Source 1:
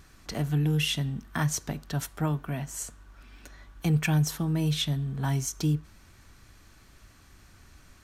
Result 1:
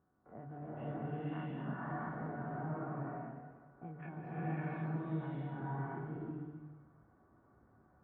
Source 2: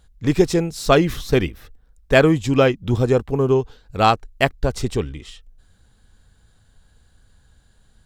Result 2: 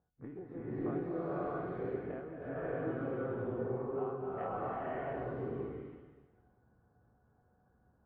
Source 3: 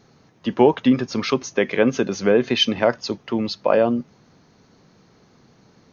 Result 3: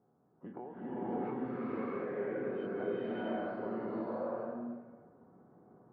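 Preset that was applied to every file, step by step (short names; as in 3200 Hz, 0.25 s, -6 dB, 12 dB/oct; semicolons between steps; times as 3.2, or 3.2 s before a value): spectral dilation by 60 ms; LPF 1500 Hz 24 dB/oct; low-pass opened by the level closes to 930 Hz, open at -14 dBFS; HPF 140 Hz 12 dB/oct; notches 50/100/150/200/250/300 Hz; compressor 12:1, threshold -25 dBFS; resonator 740 Hz, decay 0.31 s, mix 80%; bloom reverb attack 0.64 s, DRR -10.5 dB; gain -5.5 dB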